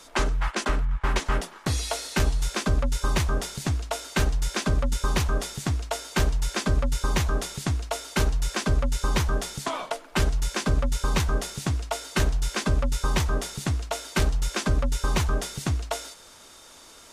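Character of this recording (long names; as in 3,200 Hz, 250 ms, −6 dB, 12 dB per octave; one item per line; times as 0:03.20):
background noise floor −49 dBFS
spectral slope −4.5 dB per octave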